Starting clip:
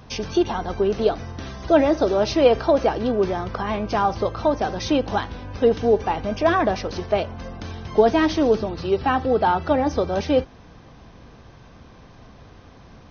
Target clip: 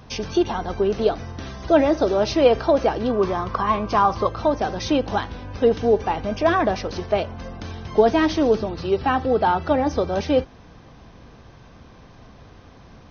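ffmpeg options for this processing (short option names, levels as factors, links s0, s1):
-filter_complex "[0:a]asettb=1/sr,asplit=3[s0][s1][s2];[s0]atrim=end=3.104[s3];[s1]atrim=start=3.1:end=4.27,asetpts=PTS-STARTPTS,afade=t=in:d=0.004:c=qsin,afade=t=out:st=1.166:d=0.004:c=qsin,equalizer=f=1100:w=6.9:g=14.5[s4];[s2]atrim=start=4.266[s5];[s3][s4]acrossfade=d=0.004:c1=hsin:c2=qsin[s6];[s6][s5]acrossfade=d=0.004:c1=qsin:c2=hsin"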